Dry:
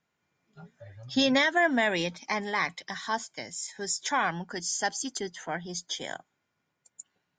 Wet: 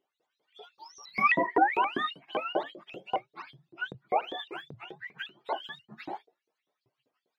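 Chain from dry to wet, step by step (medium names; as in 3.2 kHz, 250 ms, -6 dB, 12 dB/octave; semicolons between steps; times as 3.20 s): spectrum inverted on a logarithmic axis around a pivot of 750 Hz; hum notches 60/120/180/240/300/360/420/480/540/600 Hz; frequency shift +43 Hz; LFO high-pass saw up 5.1 Hz 380–4800 Hz; vibrato with a chosen wave saw up 3.8 Hz, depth 250 cents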